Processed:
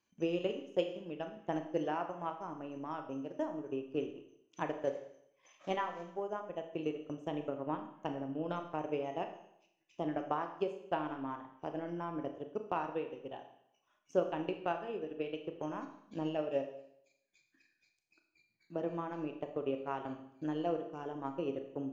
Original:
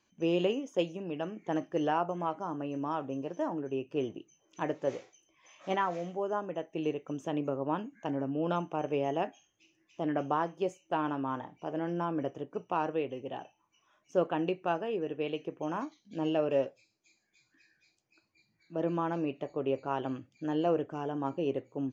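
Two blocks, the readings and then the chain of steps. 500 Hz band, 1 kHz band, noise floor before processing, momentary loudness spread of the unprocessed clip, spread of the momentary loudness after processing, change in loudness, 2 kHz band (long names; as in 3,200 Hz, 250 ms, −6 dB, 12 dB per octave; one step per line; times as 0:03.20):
−4.5 dB, −5.5 dB, −75 dBFS, 8 LU, 8 LU, −5.0 dB, −5.0 dB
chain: transient designer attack +7 dB, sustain −10 dB
four-comb reverb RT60 0.73 s, combs from 26 ms, DRR 6 dB
level −8.5 dB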